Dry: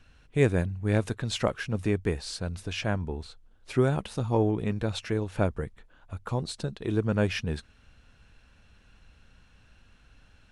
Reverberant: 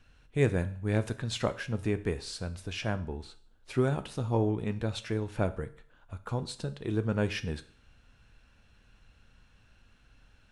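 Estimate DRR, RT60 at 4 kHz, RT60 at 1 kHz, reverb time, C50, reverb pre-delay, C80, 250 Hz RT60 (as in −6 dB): 11.0 dB, 0.50 s, 0.50 s, 0.50 s, 16.5 dB, 9 ms, 20.0 dB, 0.50 s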